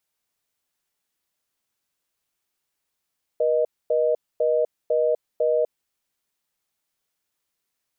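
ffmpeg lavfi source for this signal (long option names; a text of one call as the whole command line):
ffmpeg -f lavfi -i "aevalsrc='0.0944*(sin(2*PI*480*t)+sin(2*PI*620*t))*clip(min(mod(t,0.5),0.25-mod(t,0.5))/0.005,0,1)':duration=2.34:sample_rate=44100" out.wav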